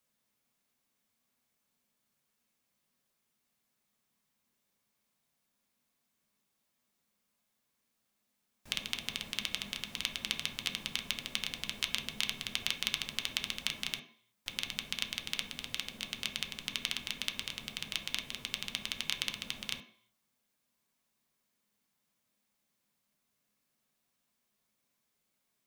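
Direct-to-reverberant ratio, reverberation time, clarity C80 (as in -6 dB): 2.0 dB, 0.60 s, 14.5 dB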